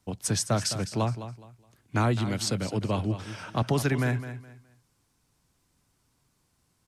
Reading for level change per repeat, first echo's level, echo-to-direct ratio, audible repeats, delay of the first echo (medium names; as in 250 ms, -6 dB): -11.5 dB, -12.0 dB, -11.5 dB, 2, 209 ms